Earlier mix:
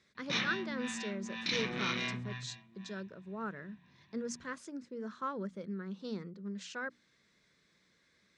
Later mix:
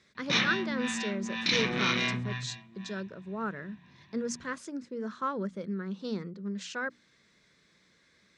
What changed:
speech +5.5 dB; background +7.0 dB

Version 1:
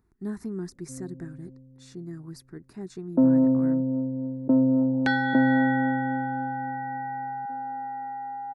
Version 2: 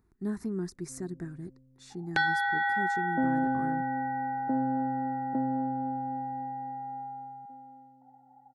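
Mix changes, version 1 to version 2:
first sound -10.0 dB; second sound: entry -2.90 s

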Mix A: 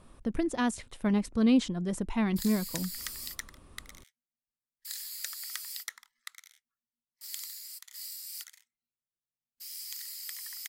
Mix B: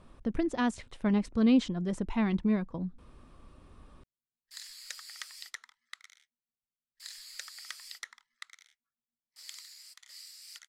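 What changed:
background: entry +2.15 s; master: add distance through air 70 m

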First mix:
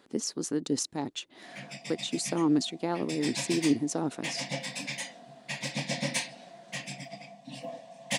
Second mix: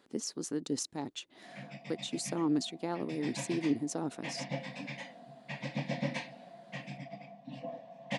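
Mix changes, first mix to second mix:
speech -5.0 dB; background: add tape spacing loss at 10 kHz 30 dB

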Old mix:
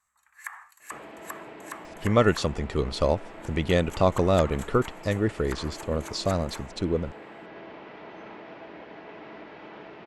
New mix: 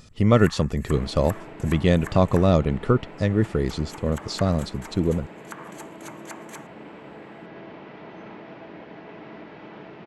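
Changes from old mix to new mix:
speech: entry -1.85 s; master: add peaking EQ 150 Hz +8 dB 1.8 oct

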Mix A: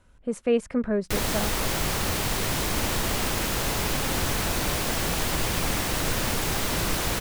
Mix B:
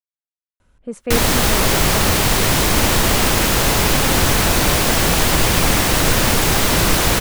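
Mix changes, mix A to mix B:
speech: entry +0.60 s; background +11.0 dB

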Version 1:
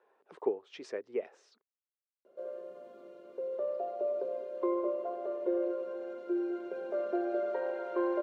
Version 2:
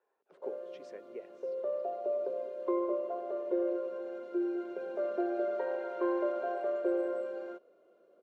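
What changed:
speech -10.5 dB; background: entry -1.95 s

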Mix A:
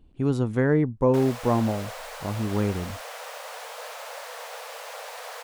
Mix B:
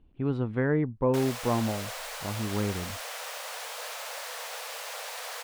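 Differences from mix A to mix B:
speech: add distance through air 420 m; master: add tilt shelf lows -4.5 dB, about 1.5 kHz

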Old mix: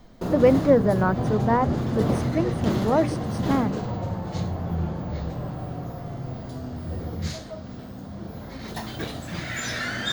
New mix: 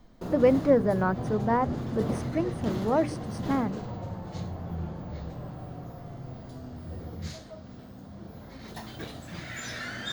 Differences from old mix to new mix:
speech -3.5 dB; background -7.5 dB

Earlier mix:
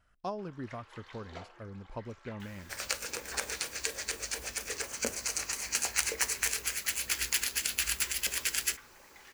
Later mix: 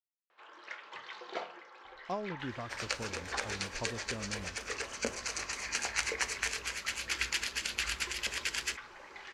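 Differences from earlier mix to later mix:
speech: entry +1.85 s; first sound +7.5 dB; master: add low-pass 5.2 kHz 12 dB/octave

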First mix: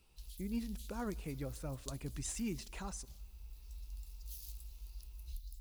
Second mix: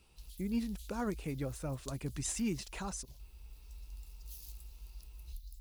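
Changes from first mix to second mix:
speech +5.5 dB; reverb: off

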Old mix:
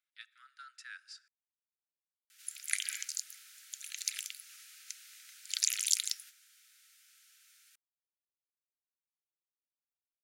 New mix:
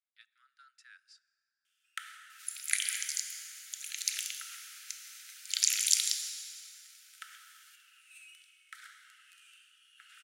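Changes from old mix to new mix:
speech -8.5 dB; first sound: unmuted; second sound: send on

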